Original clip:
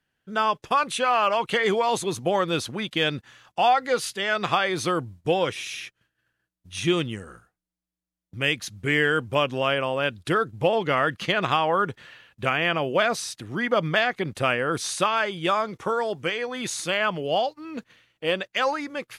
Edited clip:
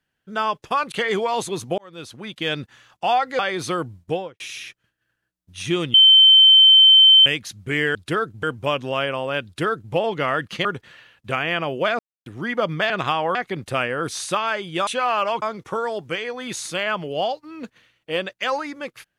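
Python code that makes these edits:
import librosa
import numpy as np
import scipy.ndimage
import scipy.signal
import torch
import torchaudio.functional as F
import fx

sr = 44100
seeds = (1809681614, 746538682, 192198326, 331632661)

y = fx.studio_fade_out(x, sr, start_s=5.21, length_s=0.36)
y = fx.edit(y, sr, fx.move(start_s=0.92, length_s=0.55, to_s=15.56),
    fx.fade_in_span(start_s=2.33, length_s=0.8),
    fx.cut(start_s=3.94, length_s=0.62),
    fx.bleep(start_s=7.11, length_s=1.32, hz=3090.0, db=-7.5),
    fx.duplicate(start_s=10.14, length_s=0.48, to_s=9.12),
    fx.move(start_s=11.34, length_s=0.45, to_s=14.04),
    fx.silence(start_s=13.13, length_s=0.27), tone=tone)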